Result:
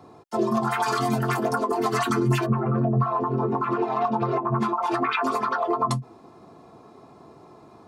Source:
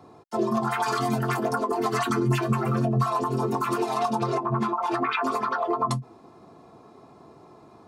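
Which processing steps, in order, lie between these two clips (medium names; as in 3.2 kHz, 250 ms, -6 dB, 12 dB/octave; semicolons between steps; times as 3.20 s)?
2.45–4.58 s: low-pass 1.1 kHz -> 2.7 kHz 12 dB/octave; trim +1.5 dB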